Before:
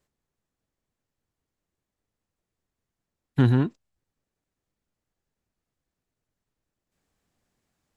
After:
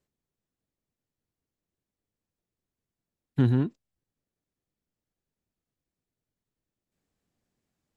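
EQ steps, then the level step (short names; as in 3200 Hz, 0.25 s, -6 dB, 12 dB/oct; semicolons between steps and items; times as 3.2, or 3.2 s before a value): low shelf 97 Hz -7.5 dB; bell 1100 Hz -7 dB 2.5 oct; high shelf 3200 Hz -7 dB; 0.0 dB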